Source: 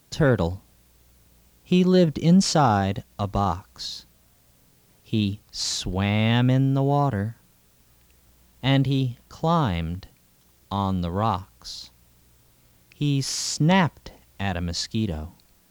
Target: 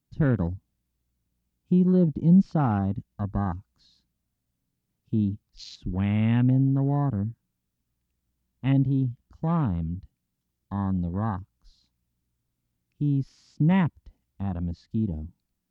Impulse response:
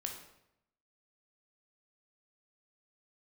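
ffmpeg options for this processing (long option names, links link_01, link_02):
-filter_complex "[0:a]acrossover=split=4800[link_01][link_02];[link_02]acompressor=threshold=-48dB:ratio=4:attack=1:release=60[link_03];[link_01][link_03]amix=inputs=2:normalize=0,afwtdn=0.0316,lowshelf=frequency=350:width_type=q:width=1.5:gain=6.5,volume=-8.5dB"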